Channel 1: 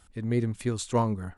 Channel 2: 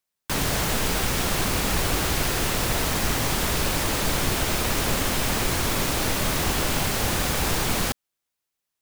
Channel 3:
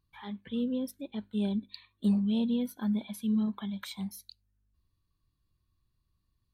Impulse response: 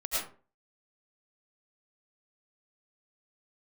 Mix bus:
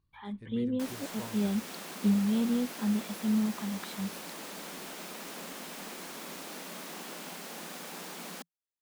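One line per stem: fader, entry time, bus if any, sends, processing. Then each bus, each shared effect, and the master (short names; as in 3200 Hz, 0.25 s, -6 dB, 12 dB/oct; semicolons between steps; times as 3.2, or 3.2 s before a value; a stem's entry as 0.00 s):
-10.0 dB, 0.25 s, no send, auto duck -10 dB, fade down 1.20 s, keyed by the third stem
-16.5 dB, 0.50 s, no send, Chebyshev high-pass 170 Hz, order 6
+0.5 dB, 0.00 s, no send, high shelf 3200 Hz -8.5 dB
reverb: off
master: dry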